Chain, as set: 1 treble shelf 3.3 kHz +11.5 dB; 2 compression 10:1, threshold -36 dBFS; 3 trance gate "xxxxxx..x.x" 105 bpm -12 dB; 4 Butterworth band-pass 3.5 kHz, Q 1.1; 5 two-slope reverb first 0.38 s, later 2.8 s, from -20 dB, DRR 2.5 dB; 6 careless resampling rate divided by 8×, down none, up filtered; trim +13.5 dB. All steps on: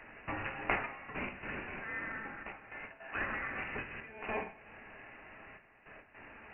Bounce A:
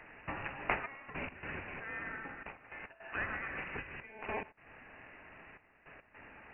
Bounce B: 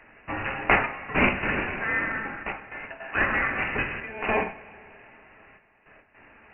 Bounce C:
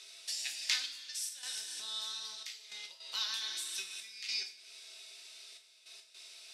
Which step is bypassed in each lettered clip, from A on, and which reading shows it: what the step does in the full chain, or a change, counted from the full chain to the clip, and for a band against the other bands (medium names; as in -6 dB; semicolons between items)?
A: 5, crest factor change +1.5 dB; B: 2, mean gain reduction 8.0 dB; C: 6, loudness change +2.0 LU